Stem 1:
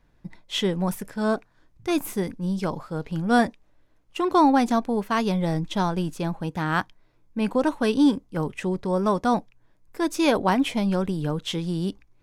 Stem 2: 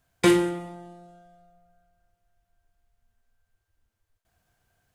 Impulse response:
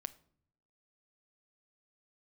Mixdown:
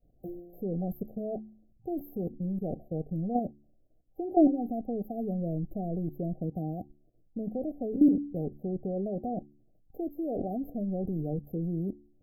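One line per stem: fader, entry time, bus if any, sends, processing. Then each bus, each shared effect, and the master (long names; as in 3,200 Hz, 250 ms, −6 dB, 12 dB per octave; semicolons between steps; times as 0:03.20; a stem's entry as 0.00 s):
+1.0 dB, 0.00 s, no send, output level in coarse steps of 16 dB
−16.5 dB, 0.00 s, no send, leveller curve on the samples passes 3; automatic ducking −23 dB, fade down 0.65 s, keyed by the first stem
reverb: not used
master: hum removal 72.09 Hz, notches 5; brick-wall band-stop 780–12,000 Hz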